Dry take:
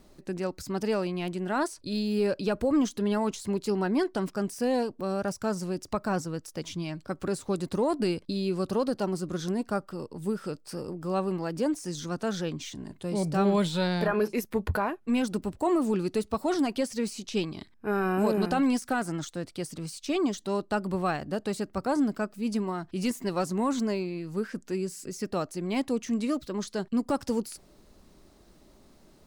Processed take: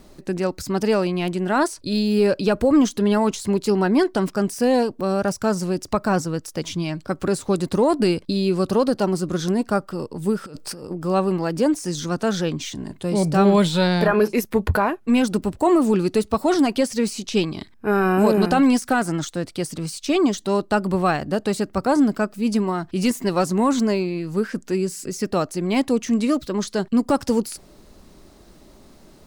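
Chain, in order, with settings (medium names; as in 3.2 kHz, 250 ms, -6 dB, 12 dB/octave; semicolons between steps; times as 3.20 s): 10.46–10.91 s: compressor with a negative ratio -44 dBFS, ratio -1; trim +8.5 dB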